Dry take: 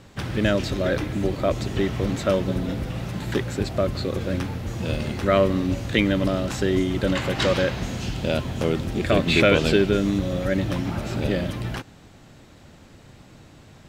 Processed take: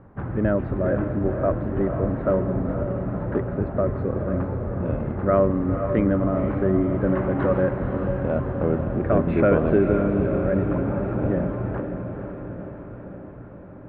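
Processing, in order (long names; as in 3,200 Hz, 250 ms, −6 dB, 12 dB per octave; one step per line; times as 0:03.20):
low-pass filter 1,400 Hz 24 dB per octave
feedback delay with all-pass diffusion 502 ms, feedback 64%, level −7 dB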